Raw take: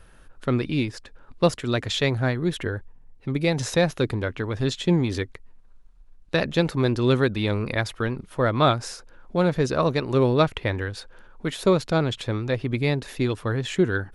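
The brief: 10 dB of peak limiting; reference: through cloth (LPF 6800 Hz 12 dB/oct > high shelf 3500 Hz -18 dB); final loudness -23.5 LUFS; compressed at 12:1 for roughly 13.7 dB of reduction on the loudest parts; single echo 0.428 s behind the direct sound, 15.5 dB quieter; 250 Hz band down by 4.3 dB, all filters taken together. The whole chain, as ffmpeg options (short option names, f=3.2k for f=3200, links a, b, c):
-af "equalizer=f=250:t=o:g=-6.5,acompressor=threshold=-29dB:ratio=12,alimiter=level_in=4dB:limit=-24dB:level=0:latency=1,volume=-4dB,lowpass=6.8k,highshelf=f=3.5k:g=-18,aecho=1:1:428:0.168,volume=15.5dB"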